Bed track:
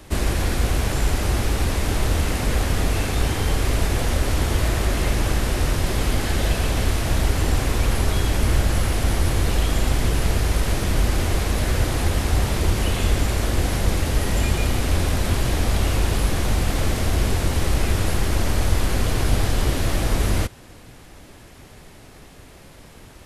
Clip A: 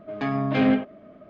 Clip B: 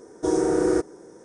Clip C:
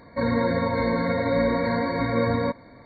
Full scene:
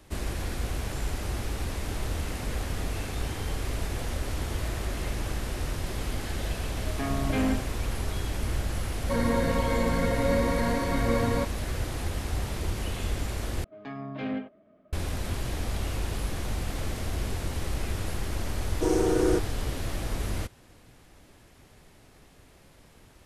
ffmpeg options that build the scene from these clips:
-filter_complex "[1:a]asplit=2[a][b];[0:a]volume=-10.5dB[c];[a]volume=16dB,asoftclip=hard,volume=-16dB[d];[c]asplit=2[e][f];[e]atrim=end=13.644[g];[b]atrim=end=1.29,asetpts=PTS-STARTPTS,volume=-12.5dB[h];[f]atrim=start=14.926[i];[d]atrim=end=1.29,asetpts=PTS-STARTPTS,volume=-6dB,afade=t=in:d=0.004:c=hsin,afade=t=out:st=1.286:d=0.004:c=hsin,adelay=6780[j];[3:a]atrim=end=2.85,asetpts=PTS-STARTPTS,volume=-3.5dB,afade=t=in:d=0.004:c=hsin,afade=t=out:st=2.846:d=0.004:c=hsin,adelay=8930[k];[2:a]atrim=end=1.24,asetpts=PTS-STARTPTS,volume=-3dB,afade=t=in:d=0.004:c=hsin,afade=t=out:st=1.236:d=0.004:c=hsin,adelay=18580[l];[g][h]acrossfade=d=0.004:c1=hsin:c2=hsin[m];[m][i]acrossfade=d=0.004:c1=hsin:c2=hsin[n];[n][j][k][l]amix=inputs=4:normalize=0"

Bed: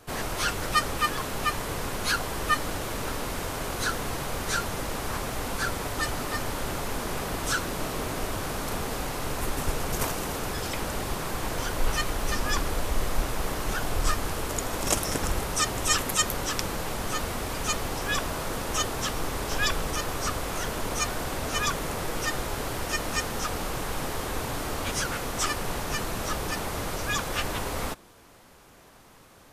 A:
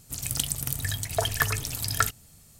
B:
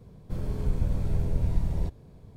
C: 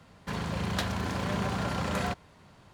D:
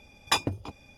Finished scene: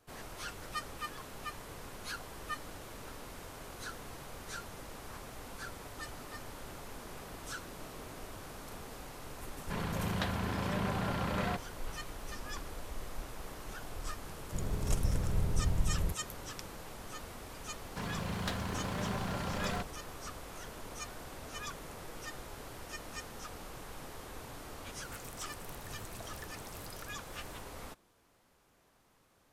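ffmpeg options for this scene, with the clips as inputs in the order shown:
-filter_complex "[3:a]asplit=2[a][b];[0:a]volume=-15.5dB[c];[a]lowpass=4.2k[d];[1:a]acompressor=threshold=-38dB:ratio=12:attack=1.6:release=173:knee=1:detection=rms[e];[d]atrim=end=2.73,asetpts=PTS-STARTPTS,volume=-3.5dB,afade=t=in:d=0.004:c=hsin,afade=t=out:st=2.726:d=0.004:c=hsin,adelay=9430[f];[2:a]atrim=end=2.36,asetpts=PTS-STARTPTS,volume=-5dB,afade=t=in:d=0.004:c=hsin,afade=t=out:st=2.356:d=0.004:c=hsin,adelay=14230[g];[b]atrim=end=2.73,asetpts=PTS-STARTPTS,volume=-6dB,afade=t=in:d=0.004:c=hsin,afade=t=out:st=2.726:d=0.004:c=hsin,adelay=17690[h];[e]atrim=end=2.59,asetpts=PTS-STARTPTS,volume=-4.5dB,afade=t=in:d=0.004:c=hsin,afade=t=out:st=2.586:d=0.004:c=hsin,adelay=25020[i];[c][f][g][h][i]amix=inputs=5:normalize=0"

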